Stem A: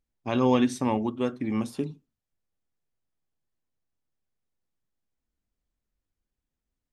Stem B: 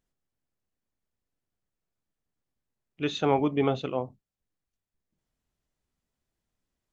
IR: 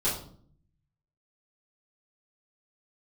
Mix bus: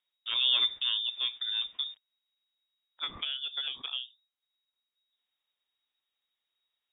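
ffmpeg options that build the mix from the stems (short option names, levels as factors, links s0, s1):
-filter_complex "[0:a]aeval=exprs='val(0)*gte(abs(val(0)),0.00376)':c=same,volume=0.562[s0];[1:a]equalizer=f=99:w=0.67:g=-13,acompressor=threshold=0.0251:ratio=16,volume=1.12[s1];[s0][s1]amix=inputs=2:normalize=0,lowpass=f=3200:t=q:w=0.5098,lowpass=f=3200:t=q:w=0.6013,lowpass=f=3200:t=q:w=0.9,lowpass=f=3200:t=q:w=2.563,afreqshift=-3800"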